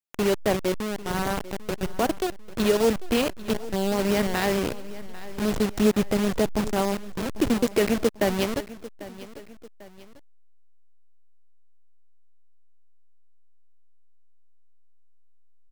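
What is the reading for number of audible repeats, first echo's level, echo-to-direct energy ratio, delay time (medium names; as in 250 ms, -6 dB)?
2, -17.0 dB, -16.0 dB, 795 ms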